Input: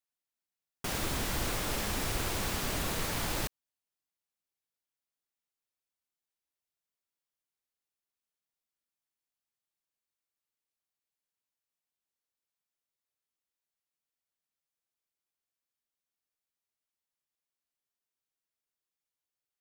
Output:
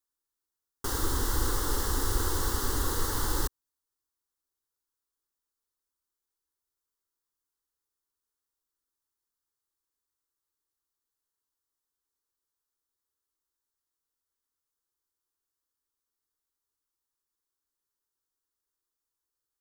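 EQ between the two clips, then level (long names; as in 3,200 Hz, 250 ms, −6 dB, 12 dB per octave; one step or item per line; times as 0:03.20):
low-shelf EQ 140 Hz +5.5 dB
phaser with its sweep stopped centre 650 Hz, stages 6
+4.5 dB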